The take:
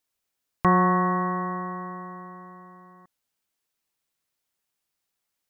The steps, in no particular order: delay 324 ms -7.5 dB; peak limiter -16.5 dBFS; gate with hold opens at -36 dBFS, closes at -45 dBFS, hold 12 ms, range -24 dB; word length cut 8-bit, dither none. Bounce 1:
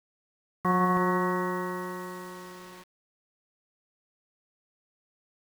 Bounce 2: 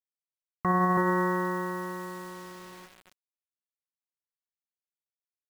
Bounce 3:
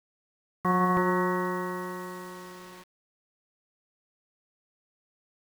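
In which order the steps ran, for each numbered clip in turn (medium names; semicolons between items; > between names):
peak limiter > delay > gate with hold > word length cut; gate with hold > delay > word length cut > peak limiter; delay > peak limiter > gate with hold > word length cut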